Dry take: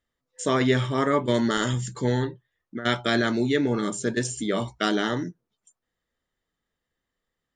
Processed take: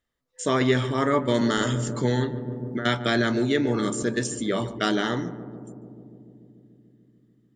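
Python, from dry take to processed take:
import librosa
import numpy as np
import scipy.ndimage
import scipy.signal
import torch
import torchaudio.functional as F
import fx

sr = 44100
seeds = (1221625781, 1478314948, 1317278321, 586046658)

y = fx.echo_filtered(x, sr, ms=146, feedback_pct=84, hz=1000.0, wet_db=-12.0)
y = fx.band_squash(y, sr, depth_pct=40, at=(1.41, 4.03))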